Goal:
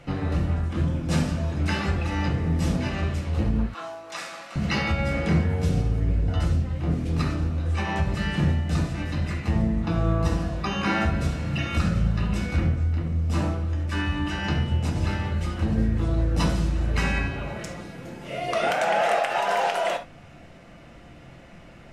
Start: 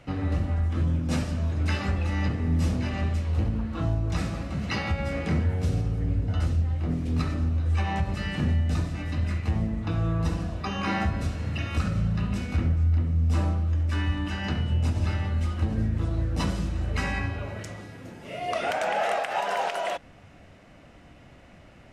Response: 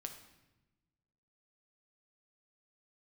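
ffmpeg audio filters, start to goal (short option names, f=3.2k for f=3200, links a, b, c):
-filter_complex "[0:a]asettb=1/sr,asplit=3[a][b][c];[a]atrim=end=3.664[d];[b]atrim=start=3.66:end=4.56,asetpts=PTS-STARTPTS,afade=t=in:d=0.004:c=qsin,afade=t=out:st=0.896:d=0.004:c=qsin,highpass=890[e];[c]atrim=start=4.556[f];[d][e]acrossfade=d=0.004:c1=hsin:c2=qsin[g];[g][f]acrossfade=d=0.004:c1=qsin:c2=hsin[h];[1:a]atrim=start_sample=2205,afade=t=out:st=0.14:d=0.01,atrim=end_sample=6615,asetrate=48510,aresample=44100[i];[h][i]afir=irnorm=-1:irlink=0,volume=8.5dB"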